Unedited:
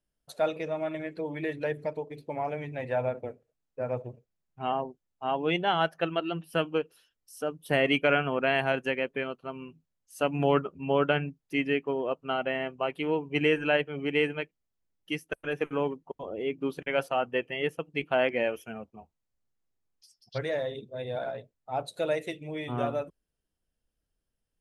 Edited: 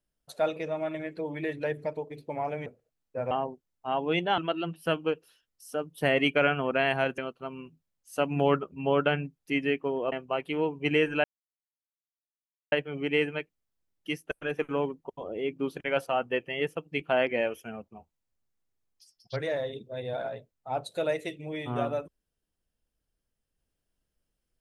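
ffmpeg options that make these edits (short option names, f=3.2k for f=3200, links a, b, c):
-filter_complex "[0:a]asplit=7[a][b][c][d][e][f][g];[a]atrim=end=2.662[h];[b]atrim=start=3.288:end=3.942[i];[c]atrim=start=4.678:end=5.752[j];[d]atrim=start=6.058:end=8.862[k];[e]atrim=start=9.208:end=12.152[l];[f]atrim=start=12.618:end=13.74,asetpts=PTS-STARTPTS,afade=t=out:st=1.118:d=0.004:c=hsin,apad=pad_dur=1.48[m];[g]atrim=start=13.74,asetpts=PTS-STARTPTS,afade=t=in:d=0.004:c=hsin[n];[h][i]acrossfade=d=0.004:c1=hsin:c2=hsin[o];[o][j]acrossfade=d=0.004:c1=hsin:c2=hsin[p];[p][k]acrossfade=d=0.004:c1=hsin:c2=hsin[q];[q][l]acrossfade=d=0.004:c1=hsin:c2=hsin[r];[m][n]concat=n=2:v=0:a=1[s];[r][s]acrossfade=d=0.004:c1=hsin:c2=hsin"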